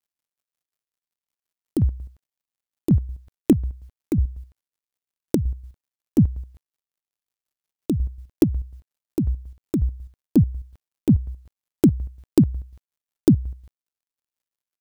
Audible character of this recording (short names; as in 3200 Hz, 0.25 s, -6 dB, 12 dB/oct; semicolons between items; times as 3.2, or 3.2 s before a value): a quantiser's noise floor 12-bit, dither none; chopped level 5.5 Hz, depth 60%, duty 40%